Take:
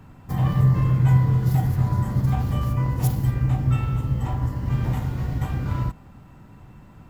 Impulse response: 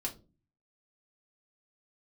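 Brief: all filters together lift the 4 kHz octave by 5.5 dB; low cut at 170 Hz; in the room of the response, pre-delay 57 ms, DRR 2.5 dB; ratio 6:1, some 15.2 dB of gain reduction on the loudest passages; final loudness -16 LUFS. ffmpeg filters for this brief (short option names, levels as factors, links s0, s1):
-filter_complex "[0:a]highpass=170,equalizer=f=4000:t=o:g=7.5,acompressor=threshold=0.0158:ratio=6,asplit=2[s0][s1];[1:a]atrim=start_sample=2205,adelay=57[s2];[s1][s2]afir=irnorm=-1:irlink=0,volume=0.668[s3];[s0][s3]amix=inputs=2:normalize=0,volume=11.2"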